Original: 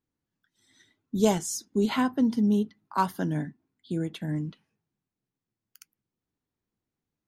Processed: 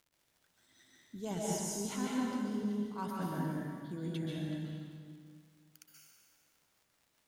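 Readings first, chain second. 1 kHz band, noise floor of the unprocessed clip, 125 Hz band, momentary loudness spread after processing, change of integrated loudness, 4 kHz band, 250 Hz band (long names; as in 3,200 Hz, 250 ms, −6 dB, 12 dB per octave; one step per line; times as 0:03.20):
−11.5 dB, below −85 dBFS, −7.5 dB, 17 LU, −10.0 dB, −8.0 dB, −10.0 dB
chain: reversed playback
downward compressor 4 to 1, threshold −33 dBFS, peak gain reduction 14.5 dB
reversed playback
surface crackle 88 per second −50 dBFS
dense smooth reverb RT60 2.1 s, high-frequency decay 0.85×, pre-delay 115 ms, DRR −4.5 dB
level −6.5 dB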